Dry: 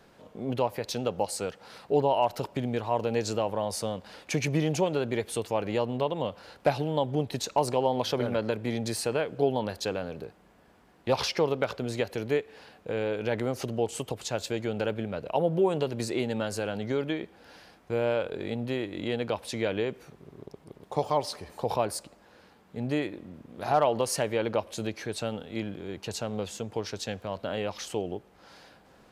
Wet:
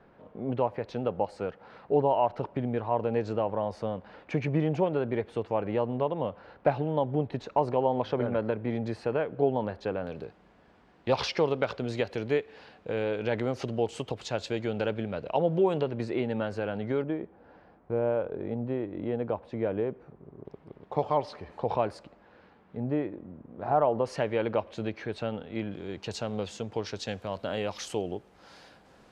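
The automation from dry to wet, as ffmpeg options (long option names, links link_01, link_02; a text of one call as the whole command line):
ffmpeg -i in.wav -af "asetnsamples=nb_out_samples=441:pad=0,asendcmd='10.07 lowpass f 4600;15.81 lowpass f 2300;17.02 lowpass f 1100;20.45 lowpass f 2500;22.77 lowpass f 1200;24.05 lowpass f 2700;25.71 lowpass f 5500;27.08 lowpass f 10000',lowpass=1800" out.wav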